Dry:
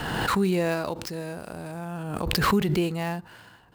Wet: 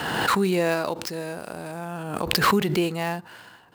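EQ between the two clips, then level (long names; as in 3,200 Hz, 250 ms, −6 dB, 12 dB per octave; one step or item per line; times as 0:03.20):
high-pass filter 260 Hz 6 dB per octave
+4.0 dB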